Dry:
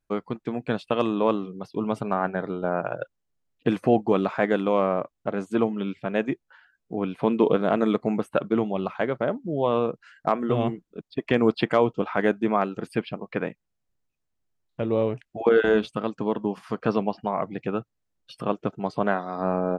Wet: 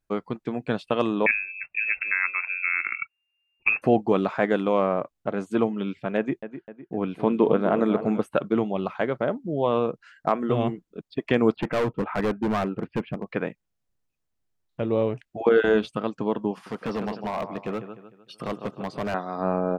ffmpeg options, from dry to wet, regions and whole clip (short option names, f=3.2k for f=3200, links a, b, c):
-filter_complex "[0:a]asettb=1/sr,asplit=3[a][b][c];[a]atrim=end=1.264[d];[b]atrim=start=1.26:end=3.82,asetpts=PTS-STARTPTS,afade=t=in:d=0.004:c=qsin,afade=t=out:st=2.556:d=0.004:c=qsin,lowpass=f=2.4k:t=q:w=0.5098,lowpass=f=2.4k:t=q:w=0.6013,lowpass=f=2.4k:t=q:w=0.9,lowpass=f=2.4k:t=q:w=2.563,afreqshift=-2800,asubboost=boost=2.5:cutoff=180[e];[c]atrim=start=3.816[f];[d][e]acrossfade=d=0.004:c1=hsin:c2=qsin[g];[g][f]acrossfade=d=0.004:c1=qsin:c2=hsin,asettb=1/sr,asplit=3[h][i][j];[h]atrim=end=6.174[k];[i]atrim=start=6.17:end=8.21,asetpts=PTS-STARTPTS,afade=t=in:d=0.004:c=qsin,afade=t=out:st=2.036:d=0.004:c=qsin,acrossover=split=2500[l][m];[m]acompressor=threshold=-49dB:ratio=4:attack=1:release=60[n];[l][n]amix=inputs=2:normalize=0,agate=range=-33dB:threshold=-44dB:ratio=3:release=100:detection=peak,asplit=2[o][p];[p]adelay=254,lowpass=f=3k:p=1,volume=-11dB,asplit=2[q][r];[r]adelay=254,lowpass=f=3k:p=1,volume=0.52,asplit=2[s][t];[t]adelay=254,lowpass=f=3k:p=1,volume=0.52,asplit=2[u][v];[v]adelay=254,lowpass=f=3k:p=1,volume=0.52,asplit=2[w][x];[x]adelay=254,lowpass=f=3k:p=1,volume=0.52,asplit=2[y][z];[z]adelay=254,lowpass=f=3k:p=1,volume=0.52[aa];[o][q][s][u][w][y][aa]amix=inputs=7:normalize=0,atrim=end_sample=89964[ab];[j]atrim=start=8.206[ac];[k][ab]acrossfade=d=0.004:c1=hsin:c2=qsin[ad];[ad][ac]acrossfade=d=0.004:c1=qsin:c2=hsin,asettb=1/sr,asplit=3[ae][af][ag];[ae]atrim=end=11.564[ah];[af]atrim=start=11.56:end=13.27,asetpts=PTS-STARTPTS,afade=t=in:d=0.004:c=qsin,afade=t=out:st=1.706:d=0.004:c=qsin,lowpass=f=2.5k:w=0.5412,lowpass=f=2.5k:w=1.3066,lowshelf=f=380:g=5.5,volume=20.5dB,asoftclip=hard,volume=-20.5dB[ai];[ag]atrim=start=13.266[aj];[ah][ai]acrossfade=d=0.004:c1=hsin:c2=qsin[ak];[ak][aj]acrossfade=d=0.004:c1=qsin:c2=hsin,asettb=1/sr,asplit=3[al][am][an];[al]atrim=end=16.514[ao];[am]atrim=start=16.51:end=19.14,asetpts=PTS-STARTPTS,afade=t=in:d=0.004:c=qsin,afade=t=out:st=2.626:d=0.004:c=qsin,highpass=f=130:p=1,aecho=1:1:151|302|453|604:0.251|0.103|0.0422|0.0173,atrim=end_sample=115983,asoftclip=type=hard:threshold=-23.5dB[ap];[an]atrim=start=19.136[aq];[ao][ap]acrossfade=d=0.004:c1=hsin:c2=qsin[ar];[ar][aq]acrossfade=d=0.004:c1=qsin:c2=hsin"